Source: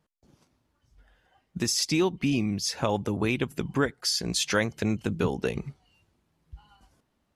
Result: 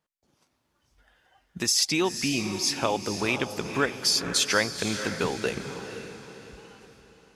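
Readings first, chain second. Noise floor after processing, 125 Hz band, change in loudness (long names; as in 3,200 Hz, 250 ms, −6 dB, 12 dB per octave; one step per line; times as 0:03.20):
−74 dBFS, −5.5 dB, +1.5 dB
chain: low-shelf EQ 350 Hz −11 dB
automatic gain control gain up to 8 dB
on a send: feedback delay with all-pass diffusion 494 ms, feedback 43%, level −9 dB
on the sum: level −4 dB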